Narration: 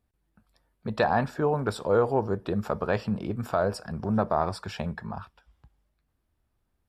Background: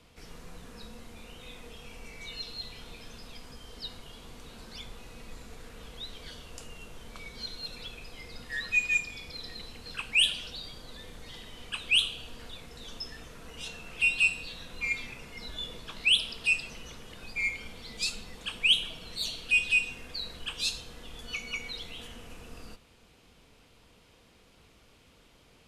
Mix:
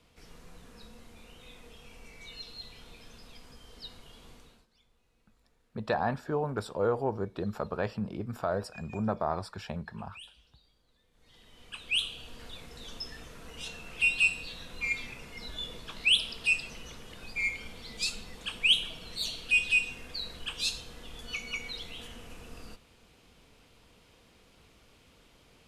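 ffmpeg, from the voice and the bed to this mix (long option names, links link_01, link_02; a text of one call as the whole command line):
ffmpeg -i stem1.wav -i stem2.wav -filter_complex "[0:a]adelay=4900,volume=-5.5dB[link_01];[1:a]volume=20dB,afade=type=out:start_time=4.31:duration=0.36:silence=0.0944061,afade=type=in:start_time=11.11:duration=1.48:silence=0.0562341[link_02];[link_01][link_02]amix=inputs=2:normalize=0" out.wav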